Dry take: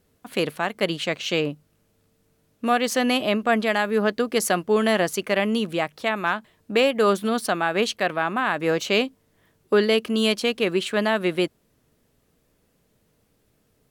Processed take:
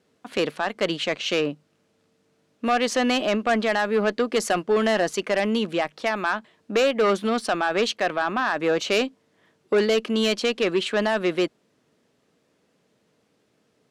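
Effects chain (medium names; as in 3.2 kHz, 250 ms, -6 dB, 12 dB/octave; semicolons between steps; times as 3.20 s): band-pass 190–6500 Hz; Chebyshev shaper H 5 -15 dB, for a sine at -6.5 dBFS; trim -3.5 dB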